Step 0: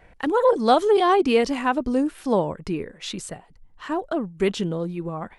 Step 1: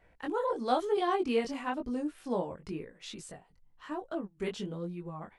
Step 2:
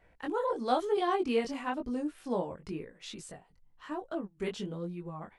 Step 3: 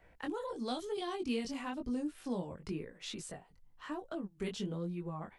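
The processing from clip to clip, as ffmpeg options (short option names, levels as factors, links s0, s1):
-af "flanger=delay=16.5:depth=6:speed=1,volume=0.376"
-af anull
-filter_complex "[0:a]acrossover=split=250|3000[s0][s1][s2];[s1]acompressor=threshold=0.00891:ratio=6[s3];[s0][s3][s2]amix=inputs=3:normalize=0,volume=1.12"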